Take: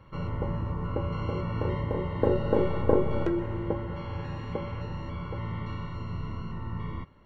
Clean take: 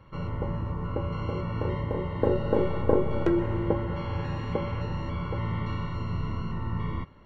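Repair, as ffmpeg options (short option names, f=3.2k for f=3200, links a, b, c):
-af "asetnsamples=n=441:p=0,asendcmd='3.26 volume volume 4dB',volume=0dB"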